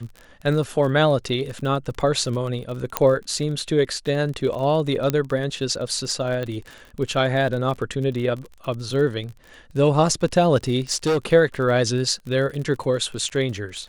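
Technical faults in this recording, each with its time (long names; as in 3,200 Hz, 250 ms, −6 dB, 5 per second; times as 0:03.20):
surface crackle 33 per second −30 dBFS
0:02.97: click −3 dBFS
0:05.10: click −7 dBFS
0:06.43: click −18 dBFS
0:10.91–0:11.26: clipping −16.5 dBFS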